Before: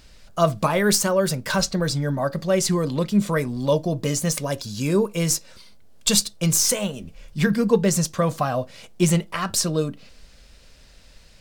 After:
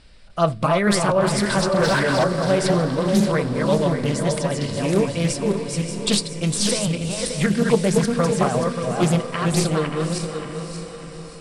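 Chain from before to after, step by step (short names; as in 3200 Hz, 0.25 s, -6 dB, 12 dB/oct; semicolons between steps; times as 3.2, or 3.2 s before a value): regenerating reverse delay 0.291 s, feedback 55%, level -3 dB; steep low-pass 10000 Hz 72 dB/oct; bell 6500 Hz -13 dB 0.36 oct; 1.77–2.24 overdrive pedal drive 21 dB, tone 1700 Hz, clips at -9 dBFS; diffused feedback echo 0.578 s, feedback 51%, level -10 dB; Doppler distortion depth 0.3 ms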